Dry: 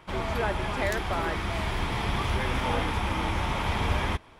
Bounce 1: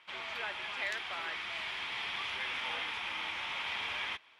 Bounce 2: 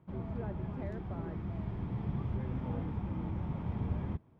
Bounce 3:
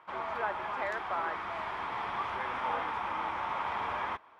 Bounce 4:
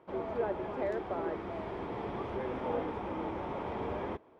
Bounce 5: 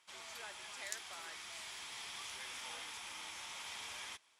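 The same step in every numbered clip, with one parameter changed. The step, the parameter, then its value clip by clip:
band-pass filter, frequency: 2.8 kHz, 150 Hz, 1.1 kHz, 430 Hz, 7.5 kHz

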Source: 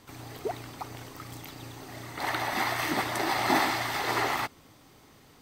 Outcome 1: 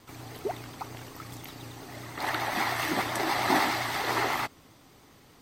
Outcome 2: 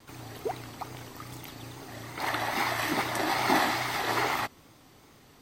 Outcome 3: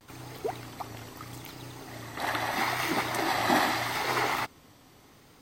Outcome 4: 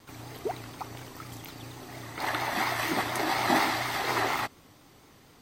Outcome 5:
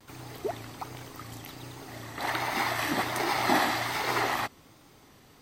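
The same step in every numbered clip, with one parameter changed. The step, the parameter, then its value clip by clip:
vibrato, rate: 10 Hz, 2.4 Hz, 0.78 Hz, 4.2 Hz, 1.3 Hz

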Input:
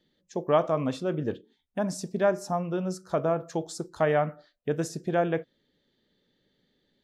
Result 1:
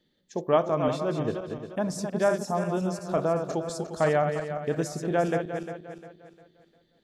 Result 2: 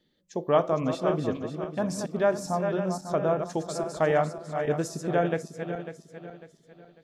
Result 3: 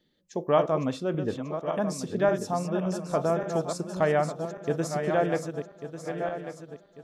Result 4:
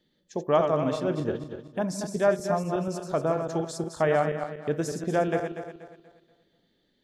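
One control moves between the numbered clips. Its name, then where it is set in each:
backward echo that repeats, time: 176 ms, 274 ms, 572 ms, 120 ms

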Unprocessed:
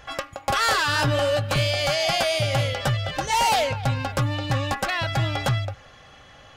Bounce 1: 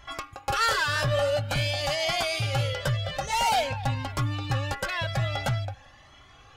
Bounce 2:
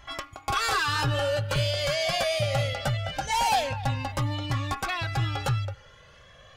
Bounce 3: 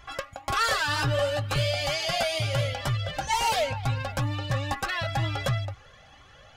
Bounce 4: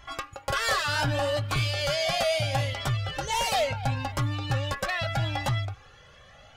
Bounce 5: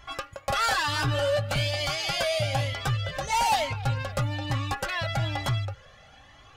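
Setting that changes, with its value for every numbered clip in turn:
Shepard-style flanger, rate: 0.49 Hz, 0.23 Hz, 2.1 Hz, 0.72 Hz, 1.1 Hz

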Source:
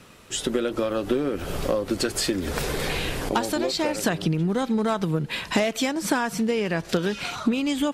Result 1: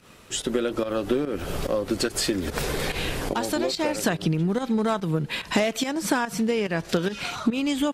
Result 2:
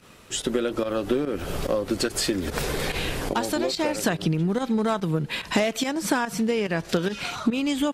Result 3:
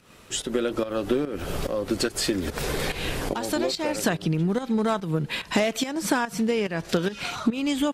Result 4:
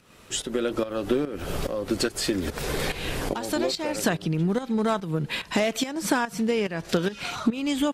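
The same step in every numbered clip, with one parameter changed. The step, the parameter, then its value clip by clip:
volume shaper, release: 101 ms, 68 ms, 213 ms, 319 ms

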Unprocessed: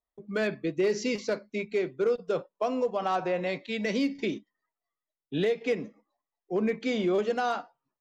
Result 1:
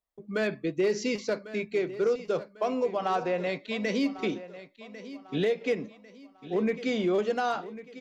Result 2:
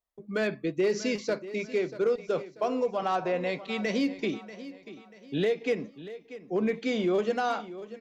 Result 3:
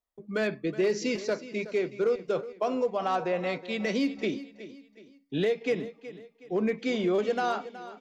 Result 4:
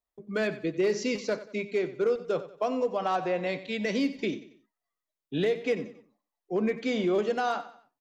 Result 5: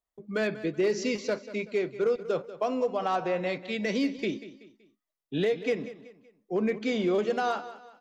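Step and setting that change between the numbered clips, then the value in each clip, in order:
feedback delay, time: 1098 ms, 638 ms, 370 ms, 92 ms, 189 ms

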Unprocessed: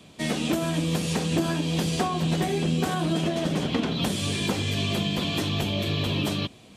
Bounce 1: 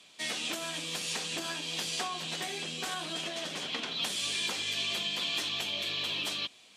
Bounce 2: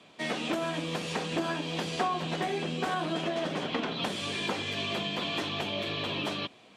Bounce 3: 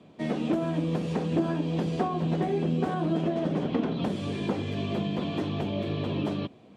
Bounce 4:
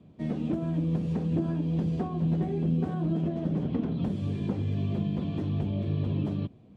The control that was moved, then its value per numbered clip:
band-pass filter, frequency: 4.6 kHz, 1.3 kHz, 390 Hz, 110 Hz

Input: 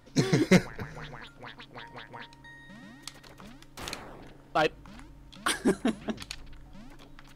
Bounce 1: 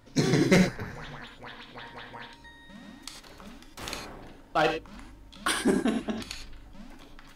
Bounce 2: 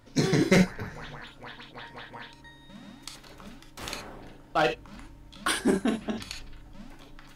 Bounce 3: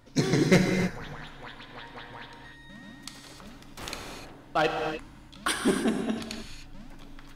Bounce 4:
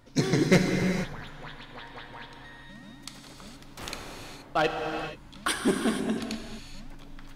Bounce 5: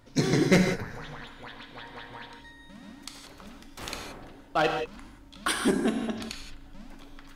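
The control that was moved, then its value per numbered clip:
gated-style reverb, gate: 130 ms, 90 ms, 330 ms, 500 ms, 200 ms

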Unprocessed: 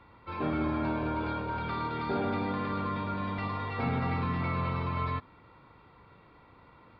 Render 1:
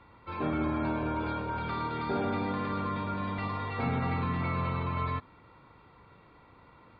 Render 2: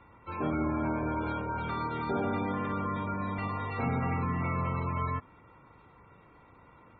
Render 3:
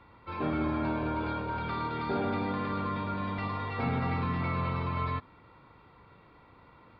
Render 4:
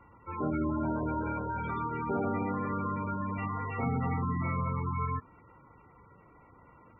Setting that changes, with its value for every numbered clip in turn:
spectral gate, under each frame's peak: -40 dB, -25 dB, -55 dB, -15 dB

